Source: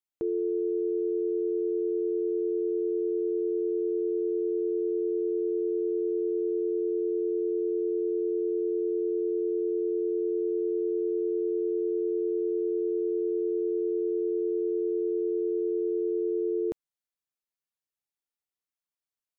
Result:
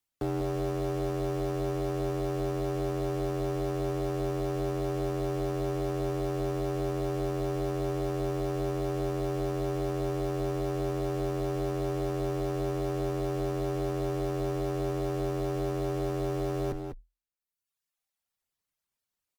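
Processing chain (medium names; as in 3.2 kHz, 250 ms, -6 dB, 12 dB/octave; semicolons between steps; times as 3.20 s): octave divider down 1 oct, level +2 dB; in parallel at -7.5 dB: word length cut 6-bit, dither none; on the sum: reverb removal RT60 1.1 s; peak limiter -27 dBFS, peak gain reduction 9.5 dB; one-sided clip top -51 dBFS, bottom -28 dBFS; echo from a far wall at 34 m, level -7 dB; frequency shift -42 Hz; trim +7.5 dB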